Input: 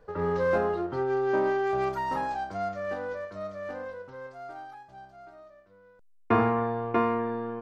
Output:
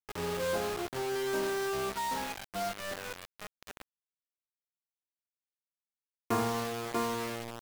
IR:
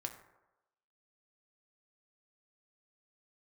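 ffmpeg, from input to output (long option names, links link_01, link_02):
-filter_complex "[0:a]asettb=1/sr,asplit=3[link_01][link_02][link_03];[link_01]atrim=end=1.154[link_04];[link_02]atrim=start=1.15:end=2.79,asetpts=PTS-STARTPTS,afade=type=in:duration=0.004:curve=qsin,afade=type=out:start_time=1.636:duration=0.004:curve=qsin,aecho=1:1:4.4:0.57,atrim=end_sample=72324[link_05];[link_03]atrim=start=2.786[link_06];[link_04][link_05]acrossfade=duration=0.004:curve1=hsin:curve2=qsin[link_07];[link_07][link_06]acrossfade=duration=0.004:curve1=qsin:curve2=hsin,acrusher=bits=4:mix=0:aa=0.000001,volume=-7.5dB"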